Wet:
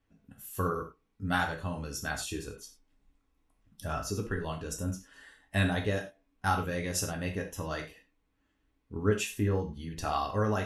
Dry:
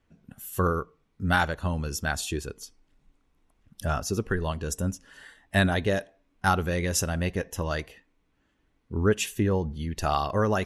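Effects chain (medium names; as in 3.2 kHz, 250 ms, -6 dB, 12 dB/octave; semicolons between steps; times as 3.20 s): gated-style reverb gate 130 ms falling, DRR 1.5 dB; trim -7.5 dB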